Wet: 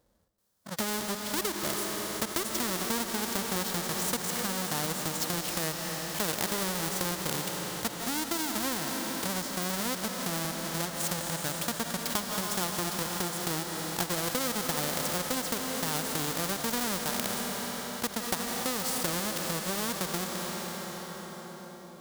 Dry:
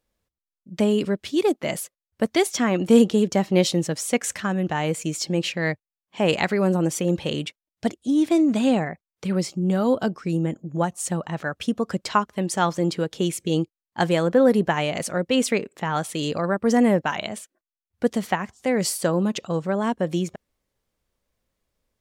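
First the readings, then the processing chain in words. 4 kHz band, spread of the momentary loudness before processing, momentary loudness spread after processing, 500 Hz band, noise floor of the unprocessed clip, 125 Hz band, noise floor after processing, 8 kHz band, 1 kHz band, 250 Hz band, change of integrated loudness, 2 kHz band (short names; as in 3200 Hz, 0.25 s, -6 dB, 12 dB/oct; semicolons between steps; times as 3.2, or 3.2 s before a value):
-1.0 dB, 9 LU, 4 LU, -13.0 dB, under -85 dBFS, -11.0 dB, -45 dBFS, +1.0 dB, -6.5 dB, -13.5 dB, -7.5 dB, -5.0 dB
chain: half-waves squared off; transient shaper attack +6 dB, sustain -7 dB; HPF 95 Hz 6 dB/oct; bell 2500 Hz -9.5 dB 0.7 oct; digital reverb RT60 4.3 s, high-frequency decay 1×, pre-delay 0.12 s, DRR 9.5 dB; harmonic-percussive split percussive -11 dB; compressor 2.5:1, threshold -23 dBFS, peak gain reduction 12 dB; spectral compressor 2:1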